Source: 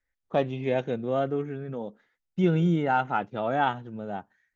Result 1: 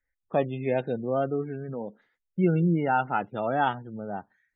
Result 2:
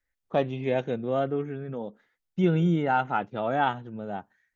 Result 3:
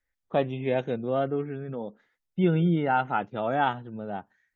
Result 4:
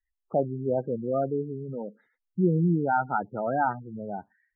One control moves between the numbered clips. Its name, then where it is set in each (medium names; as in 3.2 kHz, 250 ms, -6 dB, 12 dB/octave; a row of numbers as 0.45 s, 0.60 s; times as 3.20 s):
spectral gate, under each frame's peak: -30 dB, -60 dB, -45 dB, -15 dB